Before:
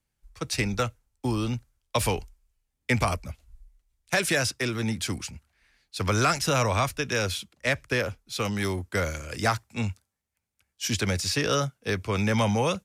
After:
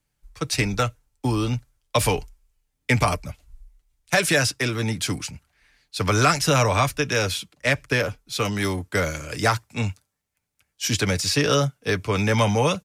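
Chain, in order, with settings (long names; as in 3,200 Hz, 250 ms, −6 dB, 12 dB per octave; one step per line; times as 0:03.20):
comb filter 6.8 ms, depth 36%
level +4 dB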